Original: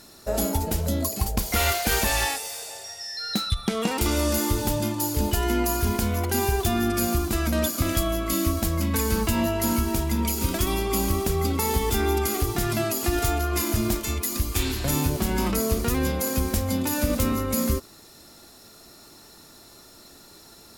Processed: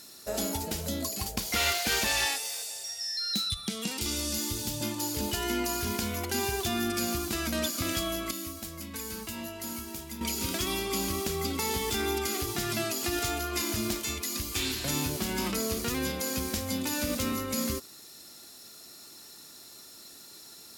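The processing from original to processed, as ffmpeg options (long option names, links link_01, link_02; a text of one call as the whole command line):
ffmpeg -i in.wav -filter_complex "[0:a]asettb=1/sr,asplit=3[link_01][link_02][link_03];[link_01]atrim=end=2.624[link_04];[link_02]atrim=start=2.62:end=4.81,asetpts=PTS-STARTPTS,afade=type=in:duration=0.004:curve=qsin,afade=type=out:start_time=2.186:duration=0.004:curve=qsin,acrossover=split=270|3000[link_05][link_06][link_07];[link_06]acompressor=threshold=-51dB:ratio=1.5:attack=3.2:release=140:knee=2.83:detection=peak[link_08];[link_05][link_08][link_07]amix=inputs=3:normalize=0[link_09];[link_03]atrim=start=4.806[link_10];[link_04][link_09]acrossfade=duration=0.004:curve1=hsin:curve2=qsin[link_11];[link_11][link_10]acrossfade=duration=0.004:curve1=qsin:curve2=hsin,asplit=3[link_12][link_13][link_14];[link_12]atrim=end=8.312[link_15];[link_13]atrim=start=8.308:end=10.212,asetpts=PTS-STARTPTS,volume=-9dB[link_16];[link_14]atrim=start=10.208[link_17];[link_15][link_16]acrossfade=duration=0.004:curve1=hsin:curve2=hsin[link_18];[link_18][link_17]acrossfade=duration=0.004:curve1=hsin:curve2=hsin,highpass=frequency=410:poles=1,acrossover=split=6500[link_19][link_20];[link_20]acompressor=threshold=-38dB:ratio=4:attack=1:release=60[link_21];[link_19][link_21]amix=inputs=2:normalize=0,equalizer=frequency=800:width=0.44:gain=-8.5,volume=2.5dB" out.wav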